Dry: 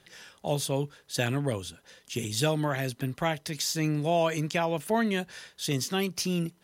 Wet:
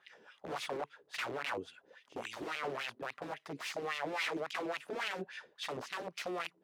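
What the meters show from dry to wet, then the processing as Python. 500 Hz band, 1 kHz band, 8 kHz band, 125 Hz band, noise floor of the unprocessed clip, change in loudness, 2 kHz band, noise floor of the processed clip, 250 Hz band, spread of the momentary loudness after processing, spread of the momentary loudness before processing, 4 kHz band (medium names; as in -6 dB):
-11.0 dB, -7.5 dB, -17.5 dB, -25.0 dB, -63 dBFS, -10.5 dB, -4.5 dB, -72 dBFS, -16.0 dB, 9 LU, 9 LU, -9.0 dB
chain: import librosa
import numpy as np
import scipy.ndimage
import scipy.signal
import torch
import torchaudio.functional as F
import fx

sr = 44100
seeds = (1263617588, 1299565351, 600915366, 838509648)

y = (np.mod(10.0 ** (26.0 / 20.0) * x + 1.0, 2.0) - 1.0) / 10.0 ** (26.0 / 20.0)
y = fx.wah_lfo(y, sr, hz=3.6, low_hz=330.0, high_hz=2700.0, q=2.8)
y = y * 10.0 ** (3.5 / 20.0)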